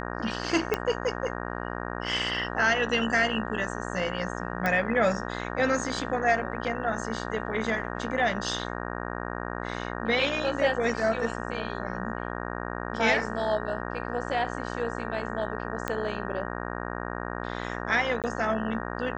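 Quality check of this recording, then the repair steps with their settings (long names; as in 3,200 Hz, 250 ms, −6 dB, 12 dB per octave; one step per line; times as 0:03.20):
mains buzz 60 Hz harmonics 31 −34 dBFS
0:00.74: click −11 dBFS
0:04.66: click −14 dBFS
0:15.88: click −14 dBFS
0:18.22–0:18.24: drop-out 18 ms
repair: click removal
hum removal 60 Hz, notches 31
repair the gap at 0:18.22, 18 ms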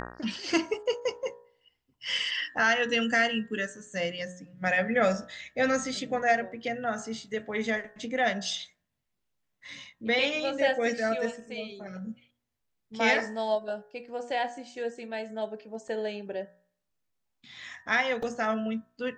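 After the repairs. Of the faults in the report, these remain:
0:00.74: click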